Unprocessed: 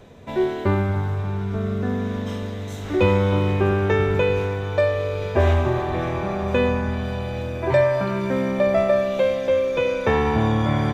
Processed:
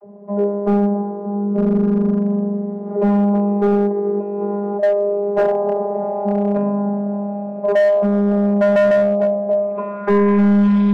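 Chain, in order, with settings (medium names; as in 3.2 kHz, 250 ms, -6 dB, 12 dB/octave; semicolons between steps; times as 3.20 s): 3.85–4.82 s: compressor with a negative ratio -25 dBFS, ratio -1; vocoder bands 32, saw 203 Hz; low-pass sweep 740 Hz -> 4 kHz, 9.59–10.77 s; hard clipper -16 dBFS, distortion -12 dB; treble shelf 2.6 kHz -8 dB; trim +5.5 dB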